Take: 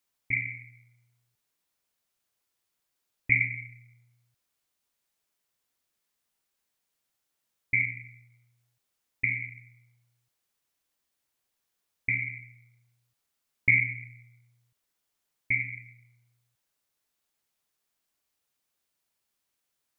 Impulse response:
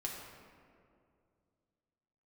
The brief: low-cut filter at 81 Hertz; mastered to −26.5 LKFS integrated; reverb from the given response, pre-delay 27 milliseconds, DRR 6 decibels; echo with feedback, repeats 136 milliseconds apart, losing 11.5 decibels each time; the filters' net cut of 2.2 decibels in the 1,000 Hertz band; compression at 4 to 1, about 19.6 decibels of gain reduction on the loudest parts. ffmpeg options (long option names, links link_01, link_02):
-filter_complex "[0:a]highpass=81,equalizer=frequency=1000:width_type=o:gain=-3,acompressor=threshold=-42dB:ratio=4,aecho=1:1:136|272|408:0.266|0.0718|0.0194,asplit=2[link_01][link_02];[1:a]atrim=start_sample=2205,adelay=27[link_03];[link_02][link_03]afir=irnorm=-1:irlink=0,volume=-6.5dB[link_04];[link_01][link_04]amix=inputs=2:normalize=0,volume=18dB"